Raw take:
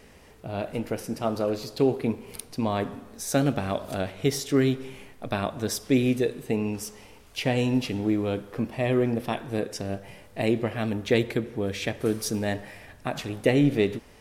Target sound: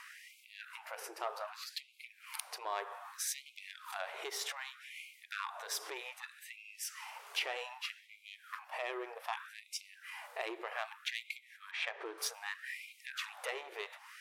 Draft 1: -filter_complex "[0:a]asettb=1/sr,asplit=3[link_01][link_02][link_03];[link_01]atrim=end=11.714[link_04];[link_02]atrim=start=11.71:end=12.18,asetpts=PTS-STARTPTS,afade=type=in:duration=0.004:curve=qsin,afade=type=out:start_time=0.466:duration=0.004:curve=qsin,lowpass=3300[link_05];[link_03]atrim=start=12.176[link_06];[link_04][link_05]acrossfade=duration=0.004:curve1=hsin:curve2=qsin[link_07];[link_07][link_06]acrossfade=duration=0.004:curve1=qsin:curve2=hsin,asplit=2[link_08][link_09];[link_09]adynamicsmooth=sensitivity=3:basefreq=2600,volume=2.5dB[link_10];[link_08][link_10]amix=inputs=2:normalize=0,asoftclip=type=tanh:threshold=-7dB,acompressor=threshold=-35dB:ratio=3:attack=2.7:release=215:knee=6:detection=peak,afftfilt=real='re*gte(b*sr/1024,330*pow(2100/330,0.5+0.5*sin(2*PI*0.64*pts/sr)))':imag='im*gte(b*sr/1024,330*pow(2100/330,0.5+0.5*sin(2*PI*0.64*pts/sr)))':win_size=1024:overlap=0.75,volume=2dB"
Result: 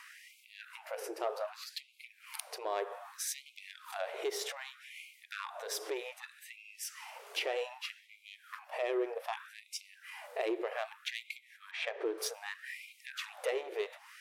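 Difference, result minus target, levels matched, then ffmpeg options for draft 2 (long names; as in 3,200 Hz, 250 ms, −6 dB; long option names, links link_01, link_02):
500 Hz band +6.5 dB
-filter_complex "[0:a]asettb=1/sr,asplit=3[link_01][link_02][link_03];[link_01]atrim=end=11.714[link_04];[link_02]atrim=start=11.71:end=12.18,asetpts=PTS-STARTPTS,afade=type=in:duration=0.004:curve=qsin,afade=type=out:start_time=0.466:duration=0.004:curve=qsin,lowpass=3300[link_05];[link_03]atrim=start=12.176[link_06];[link_04][link_05]acrossfade=duration=0.004:curve1=hsin:curve2=qsin[link_07];[link_07][link_06]acrossfade=duration=0.004:curve1=qsin:curve2=hsin,asplit=2[link_08][link_09];[link_09]adynamicsmooth=sensitivity=3:basefreq=2600,volume=2.5dB[link_10];[link_08][link_10]amix=inputs=2:normalize=0,asoftclip=type=tanh:threshold=-7dB,acompressor=threshold=-35dB:ratio=3:attack=2.7:release=215:knee=6:detection=peak,lowshelf=frequency=700:width_type=q:width=1.5:gain=-8.5,afftfilt=real='re*gte(b*sr/1024,330*pow(2100/330,0.5+0.5*sin(2*PI*0.64*pts/sr)))':imag='im*gte(b*sr/1024,330*pow(2100/330,0.5+0.5*sin(2*PI*0.64*pts/sr)))':win_size=1024:overlap=0.75,volume=2dB"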